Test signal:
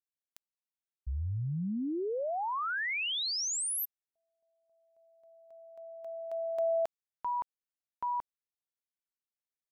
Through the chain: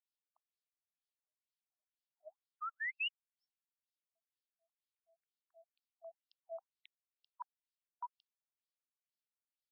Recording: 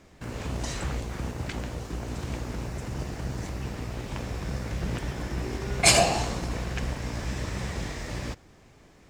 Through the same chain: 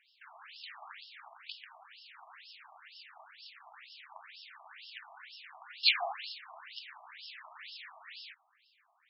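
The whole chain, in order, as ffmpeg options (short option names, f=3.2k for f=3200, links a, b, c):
-af "crystalizer=i=4.5:c=0,afftfilt=real='re*between(b*sr/1024,870*pow(3900/870,0.5+0.5*sin(2*PI*2.1*pts/sr))/1.41,870*pow(3900/870,0.5+0.5*sin(2*PI*2.1*pts/sr))*1.41)':imag='im*between(b*sr/1024,870*pow(3900/870,0.5+0.5*sin(2*PI*2.1*pts/sr))/1.41,870*pow(3900/870,0.5+0.5*sin(2*PI*2.1*pts/sr))*1.41)':win_size=1024:overlap=0.75,volume=-8.5dB"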